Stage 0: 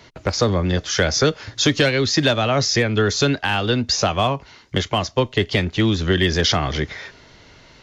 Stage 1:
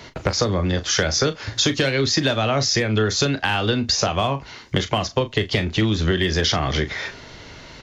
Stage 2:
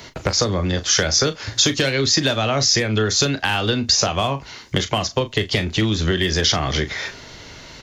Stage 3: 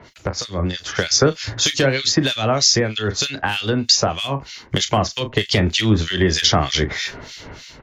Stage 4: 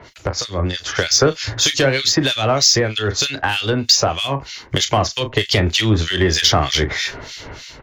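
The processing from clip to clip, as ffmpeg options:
-filter_complex "[0:a]acompressor=threshold=0.0562:ratio=4,asplit=2[s0][s1];[s1]adelay=37,volume=0.266[s2];[s0][s2]amix=inputs=2:normalize=0,volume=2.11"
-af "highshelf=f=6300:g=11"
-filter_complex "[0:a]acrossover=split=1900[s0][s1];[s0]aeval=exprs='val(0)*(1-1/2+1/2*cos(2*PI*3.2*n/s))':c=same[s2];[s1]aeval=exprs='val(0)*(1-1/2-1/2*cos(2*PI*3.2*n/s))':c=same[s3];[s2][s3]amix=inputs=2:normalize=0,dynaudnorm=f=250:g=5:m=3.76,volume=0.891"
-filter_complex "[0:a]equalizer=f=200:w=1.9:g=-6,asplit=2[s0][s1];[s1]asoftclip=type=tanh:threshold=0.126,volume=0.501[s2];[s0][s2]amix=inputs=2:normalize=0"

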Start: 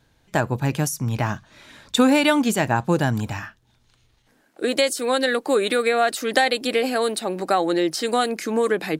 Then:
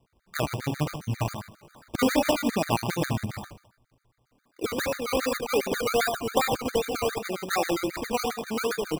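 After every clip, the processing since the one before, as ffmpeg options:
-filter_complex "[0:a]asplit=2[s0][s1];[s1]adelay=76,lowpass=f=3300:p=1,volume=0.562,asplit=2[s2][s3];[s3]adelay=76,lowpass=f=3300:p=1,volume=0.39,asplit=2[s4][s5];[s5]adelay=76,lowpass=f=3300:p=1,volume=0.39,asplit=2[s6][s7];[s7]adelay=76,lowpass=f=3300:p=1,volume=0.39,asplit=2[s8][s9];[s9]adelay=76,lowpass=f=3300:p=1,volume=0.39[s10];[s0][s2][s4][s6][s8][s10]amix=inputs=6:normalize=0,acrusher=samples=20:mix=1:aa=0.000001:lfo=1:lforange=12:lforate=2.6,afftfilt=real='re*gt(sin(2*PI*7.4*pts/sr)*(1-2*mod(floor(b*sr/1024/1200),2)),0)':imag='im*gt(sin(2*PI*7.4*pts/sr)*(1-2*mod(floor(b*sr/1024/1200),2)),0)':win_size=1024:overlap=0.75,volume=0.631"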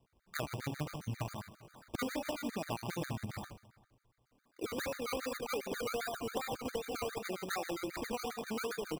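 -filter_complex "[0:a]acompressor=threshold=0.0355:ratio=6,asplit=2[s0][s1];[s1]adelay=396.5,volume=0.0631,highshelf=f=4000:g=-8.92[s2];[s0][s2]amix=inputs=2:normalize=0,volume=0.531"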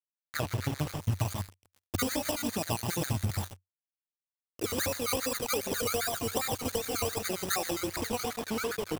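-filter_complex "[0:a]acrossover=split=4800[s0][s1];[s1]dynaudnorm=f=210:g=11:m=2.99[s2];[s0][s2]amix=inputs=2:normalize=0,acrusher=bits=6:mix=0:aa=0.5,equalizer=f=92:t=o:w=0.49:g=12.5,volume=1.78"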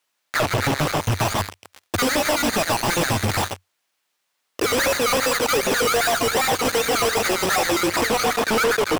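-filter_complex "[0:a]asplit=2[s0][s1];[s1]highpass=f=720:p=1,volume=44.7,asoftclip=type=tanh:threshold=0.251[s2];[s0][s2]amix=inputs=2:normalize=0,lowpass=f=3700:p=1,volume=0.501,volume=1.19"

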